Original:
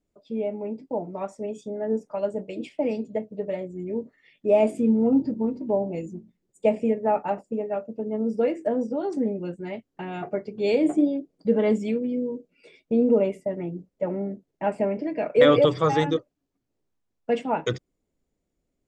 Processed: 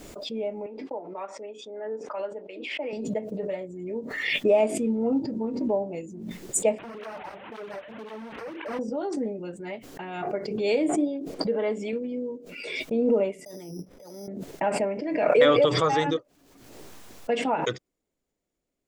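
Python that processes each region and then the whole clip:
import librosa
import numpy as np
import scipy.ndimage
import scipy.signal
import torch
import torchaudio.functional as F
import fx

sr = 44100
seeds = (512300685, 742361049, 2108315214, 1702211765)

y = fx.chain(x, sr, fx.bandpass_edges(low_hz=430.0, high_hz=2900.0),
    fx.peak_eq(hz=670.0, db=-5.5, octaves=0.65), at=(0.66, 2.93))
y = fx.chain(y, sr, fx.delta_mod(bps=16000, step_db=-38.0),
    fx.overload_stage(gain_db=31.0),
    fx.flanger_cancel(hz=1.9, depth_ms=5.2), at=(6.78, 8.79))
y = fx.chain(y, sr, fx.lowpass(hz=2700.0, slope=6),
    fx.peak_eq(hz=130.0, db=-12.5, octaves=1.5), at=(11.34, 11.93))
y = fx.chain(y, sr, fx.over_compress(threshold_db=-39.0, ratio=-1.0),
    fx.resample_bad(factor=8, down='filtered', up='hold'),
    fx.band_widen(depth_pct=100), at=(13.45, 14.28))
y = fx.low_shelf(y, sr, hz=290.0, db=-10.0)
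y = fx.pre_swell(y, sr, db_per_s=42.0)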